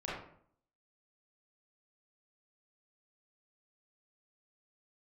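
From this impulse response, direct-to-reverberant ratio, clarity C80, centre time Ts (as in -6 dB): -7.5 dB, 5.0 dB, 59 ms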